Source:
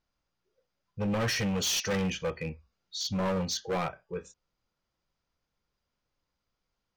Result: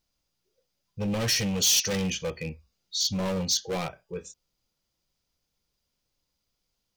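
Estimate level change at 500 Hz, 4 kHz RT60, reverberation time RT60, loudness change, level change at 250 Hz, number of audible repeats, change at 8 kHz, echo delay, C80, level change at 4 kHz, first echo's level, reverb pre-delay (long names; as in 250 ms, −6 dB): 0.0 dB, no reverb audible, no reverb audible, +5.0 dB, +1.5 dB, no echo audible, +9.0 dB, no echo audible, no reverb audible, +6.5 dB, no echo audible, no reverb audible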